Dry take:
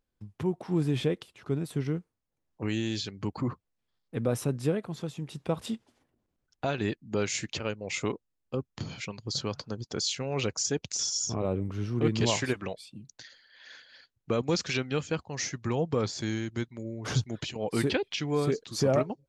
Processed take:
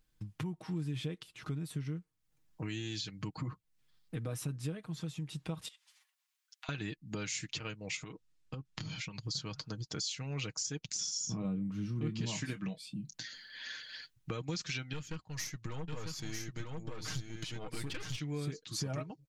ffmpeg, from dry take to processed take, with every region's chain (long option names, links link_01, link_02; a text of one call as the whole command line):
ffmpeg -i in.wav -filter_complex "[0:a]asettb=1/sr,asplit=3[link_01][link_02][link_03];[link_01]atrim=end=5.684[link_04];[link_02]atrim=start=5.68:end=6.69,asetpts=PTS-STARTPTS,afade=type=in:duration=0.004:curve=qsin,afade=type=out:start_time=1.006:duration=0.004:curve=qsin,highpass=frequency=1100:width=0.5412,highpass=frequency=1100:width=1.3066,equalizer=frequency=1400:width_type=o:width=0.71:gain=-6,acompressor=threshold=-54dB:ratio=6:attack=3.2:release=140:knee=1:detection=peak[link_05];[link_03]atrim=start=6.686[link_06];[link_04][link_05]acrossfade=duration=0.004:curve1=hsin:curve2=qsin[link_07];[link_07][link_06]acrossfade=duration=0.004:curve1=qsin:curve2=hsin,asettb=1/sr,asplit=3[link_08][link_09][link_10];[link_08]atrim=end=7.964[link_11];[link_09]atrim=start=7.96:end=9.23,asetpts=PTS-STARTPTS,afade=type=in:duration=0.004:curve=qsin,afade=type=out:start_time=1.266:duration=0.004:curve=qsin,lowpass=8100,acompressor=threshold=-37dB:ratio=6:attack=3.2:release=140:knee=1:detection=peak[link_12];[link_10]atrim=start=9.226[link_13];[link_11][link_12]acrossfade=duration=0.004:curve1=hsin:curve2=qsin[link_14];[link_14][link_13]acrossfade=duration=0.004:curve1=qsin:curve2=hsin,asettb=1/sr,asplit=3[link_15][link_16][link_17];[link_15]atrim=end=10.864[link_18];[link_16]atrim=start=10.86:end=13.72,asetpts=PTS-STARTPTS,afade=type=in:duration=0.004:curve=qsin,afade=type=out:start_time=2.856:duration=0.004:curve=qsin,equalizer=frequency=210:width=1.8:gain=13,asplit=2[link_19][link_20];[link_20]adelay=26,volume=-12dB[link_21];[link_19][link_21]amix=inputs=2:normalize=0,atrim=end_sample=126126[link_22];[link_17]atrim=start=13.716[link_23];[link_18][link_22]acrossfade=duration=0.004:curve1=hsin:curve2=qsin[link_24];[link_24][link_23]acrossfade=duration=0.004:curve1=qsin:curve2=hsin,asettb=1/sr,asplit=3[link_25][link_26][link_27];[link_25]atrim=end=14.934[link_28];[link_26]atrim=start=14.93:end=18.2,asetpts=PTS-STARTPTS,afade=type=in:duration=0.004:curve=qsin,afade=type=out:start_time=3.266:duration=0.004:curve=qsin,aeval=exprs='(tanh(22.4*val(0)+0.7)-tanh(0.7))/22.4':channel_layout=same,aecho=1:1:947:0.668,atrim=end_sample=144207[link_29];[link_27]atrim=start=18.196[link_30];[link_28][link_29]acrossfade=duration=0.004:curve1=hsin:curve2=qsin[link_31];[link_31][link_30]acrossfade=duration=0.004:curve1=qsin:curve2=hsin,equalizer=frequency=540:width=0.64:gain=-10.5,aecho=1:1:6.4:0.58,acompressor=threshold=-49dB:ratio=3,volume=8dB" out.wav